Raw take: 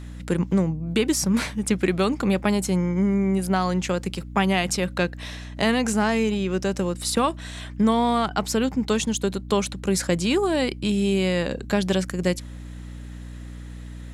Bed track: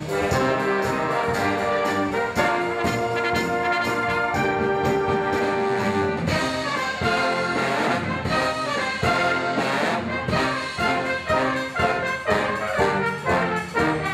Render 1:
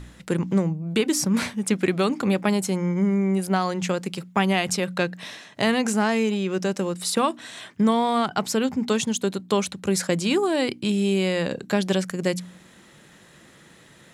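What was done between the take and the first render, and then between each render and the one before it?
de-hum 60 Hz, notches 5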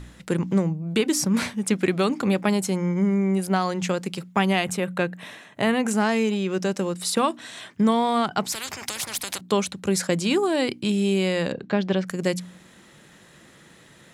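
4.64–5.91 s: peaking EQ 5 kHz -12 dB 0.84 oct; 8.52–9.41 s: spectrum-flattening compressor 10:1; 11.52–12.07 s: distance through air 210 m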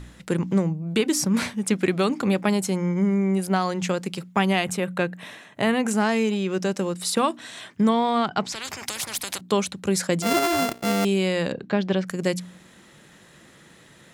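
7.89–8.65 s: low-pass 5.9 kHz; 10.22–11.05 s: sorted samples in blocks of 64 samples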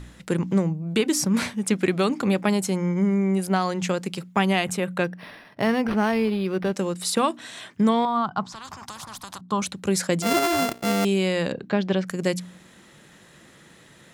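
5.04–6.73 s: decimation joined by straight lines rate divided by 6×; 8.05–9.62 s: FFT filter 180 Hz 0 dB, 470 Hz -11 dB, 1.1 kHz +4 dB, 2.2 kHz -16 dB, 3.4 kHz -9 dB, 6.2 kHz -10 dB, 13 kHz -15 dB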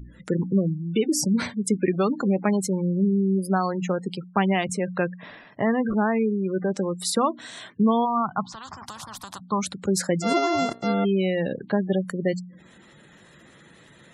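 spectral gate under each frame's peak -20 dB strong; dynamic bell 2.6 kHz, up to -6 dB, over -51 dBFS, Q 5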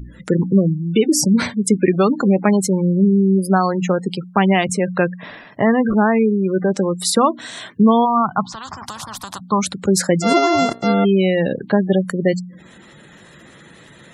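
trim +7.5 dB; peak limiter -3 dBFS, peak gain reduction 1.5 dB

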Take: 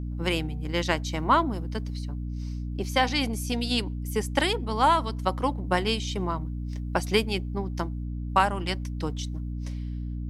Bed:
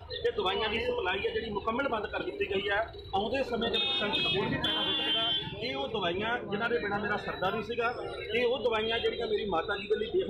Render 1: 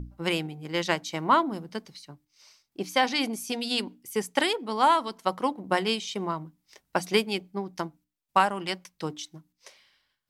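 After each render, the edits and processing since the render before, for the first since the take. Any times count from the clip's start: hum notches 60/120/180/240/300 Hz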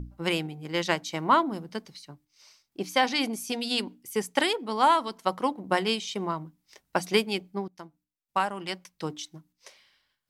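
7.68–9.15 s: fade in, from -15.5 dB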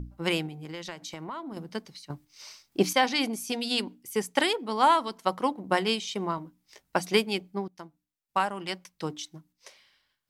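0.48–1.57 s: compression, threshold -35 dBFS; 2.10–2.93 s: gain +9.5 dB; 6.36–6.96 s: doubling 16 ms -7.5 dB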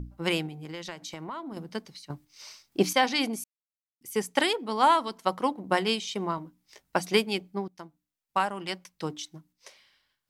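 3.44–4.01 s: mute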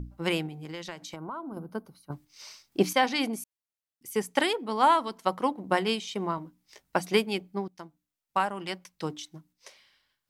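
1.16–2.12 s: time-frequency box 1.6–9 kHz -16 dB; dynamic bell 5.4 kHz, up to -4 dB, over -43 dBFS, Q 0.7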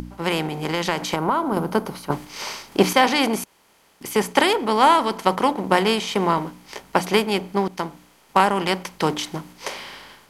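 spectral levelling over time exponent 0.6; level rider gain up to 8 dB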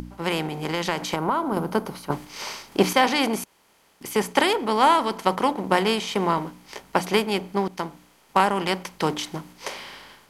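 trim -2.5 dB

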